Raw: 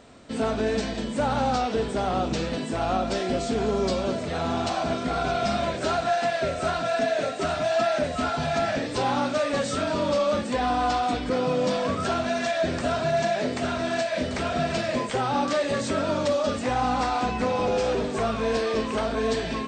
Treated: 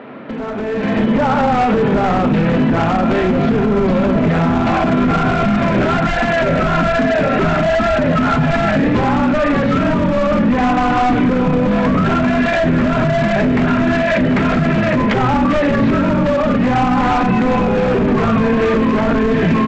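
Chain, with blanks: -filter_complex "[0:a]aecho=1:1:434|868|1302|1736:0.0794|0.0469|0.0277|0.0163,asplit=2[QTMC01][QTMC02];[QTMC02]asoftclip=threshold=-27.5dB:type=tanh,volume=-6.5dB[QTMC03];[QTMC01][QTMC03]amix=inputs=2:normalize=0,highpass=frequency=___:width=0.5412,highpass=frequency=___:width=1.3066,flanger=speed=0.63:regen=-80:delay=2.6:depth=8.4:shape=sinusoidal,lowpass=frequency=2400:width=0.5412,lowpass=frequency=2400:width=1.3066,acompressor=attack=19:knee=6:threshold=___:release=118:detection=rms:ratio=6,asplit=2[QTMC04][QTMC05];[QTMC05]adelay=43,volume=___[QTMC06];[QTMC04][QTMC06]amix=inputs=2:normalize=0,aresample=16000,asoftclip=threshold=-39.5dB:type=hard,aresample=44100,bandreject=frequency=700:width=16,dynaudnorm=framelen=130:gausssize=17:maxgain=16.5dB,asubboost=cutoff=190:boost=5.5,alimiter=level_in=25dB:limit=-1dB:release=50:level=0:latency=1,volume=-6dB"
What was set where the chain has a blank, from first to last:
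150, 150, -42dB, -13dB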